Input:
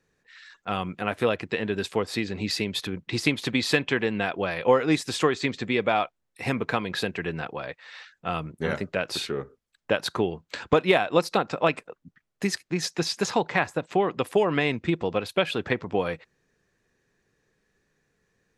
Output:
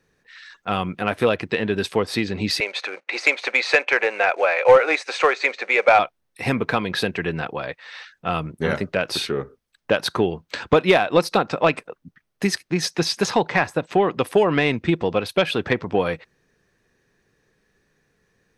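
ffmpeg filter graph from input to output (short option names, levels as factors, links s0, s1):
-filter_complex "[0:a]asettb=1/sr,asplit=3[s0][s1][s2];[s0]atrim=end=2.604[s3];[s1]atrim=start=2.6:end=5.99,asetpts=PTS-STARTPTS,afade=t=in:d=0.004:c=qsin,afade=t=out:st=3.386:d=0.004:c=qsin,acrusher=bits=5:mode=log:mix=0:aa=0.000001,highpass=f=470:w=0.5412,highpass=f=470:w=1.3066,equalizer=f=550:t=q:w=4:g=8,equalizer=f=800:t=q:w=4:g=5,equalizer=f=1400:t=q:w=4:g=6,equalizer=f=2300:t=q:w=4:g=9,equalizer=f=3300:t=q:w=4:g=-8,equalizer=f=5200:t=q:w=4:g=-8,lowpass=f=6500:w=0.5412,lowpass=f=6500:w=1.3066[s4];[s2]atrim=start=5.986[s5];[s3][s4]acrossfade=d=0.004:c1=hsin:c2=qsin[s6];[s6][s5]acrossfade=d=0.004:c1=qsin:c2=hsin,bandreject=f=7200:w=6.9,acontrast=79,volume=0.841"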